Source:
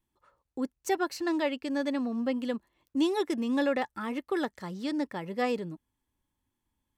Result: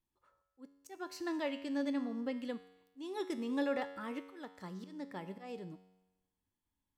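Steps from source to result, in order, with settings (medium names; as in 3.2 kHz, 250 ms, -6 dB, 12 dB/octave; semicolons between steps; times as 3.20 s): slow attack 305 ms; feedback comb 93 Hz, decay 1 s, harmonics all, mix 70%; trim +1 dB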